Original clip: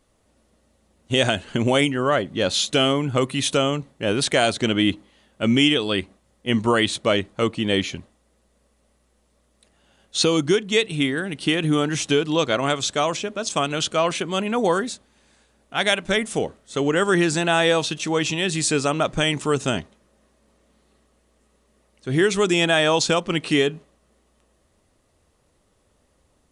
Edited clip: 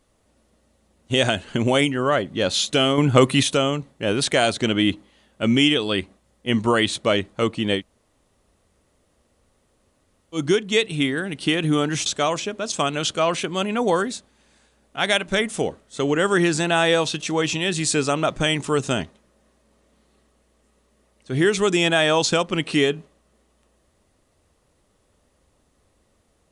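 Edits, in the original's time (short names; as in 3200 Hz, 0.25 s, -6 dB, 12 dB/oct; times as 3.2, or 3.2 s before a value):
2.98–3.43 gain +6.5 dB
7.78–10.37 room tone, crossfade 0.10 s
12.06–12.83 cut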